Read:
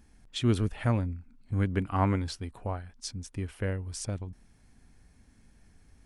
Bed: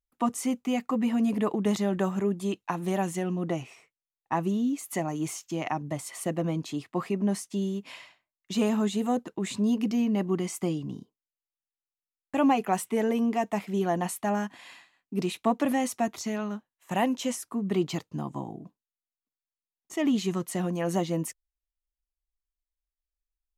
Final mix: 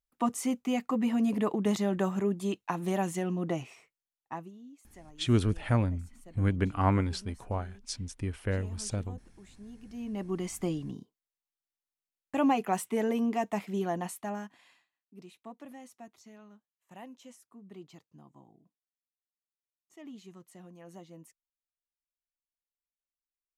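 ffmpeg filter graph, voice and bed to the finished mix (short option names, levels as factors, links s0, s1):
-filter_complex "[0:a]adelay=4850,volume=1.06[s0];[1:a]volume=7.94,afade=t=out:st=3.95:d=0.56:silence=0.0891251,afade=t=in:st=9.86:d=0.69:silence=0.1,afade=t=out:st=13.58:d=1.33:silence=0.11885[s1];[s0][s1]amix=inputs=2:normalize=0"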